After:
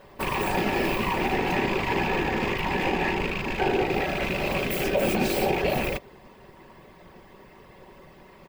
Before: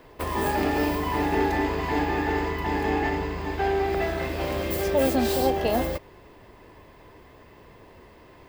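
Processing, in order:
loose part that buzzes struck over −31 dBFS, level −17 dBFS
brickwall limiter −16 dBFS, peak gain reduction 6 dB
random phases in short frames
comb filter 5.3 ms, depth 39%

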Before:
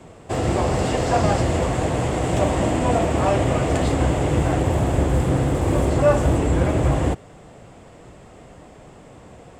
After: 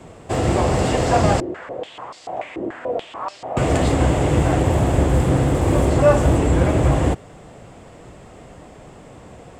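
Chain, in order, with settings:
0:01.40–0:03.57: band-pass on a step sequencer 6.9 Hz 360–4,700 Hz
level +2.5 dB

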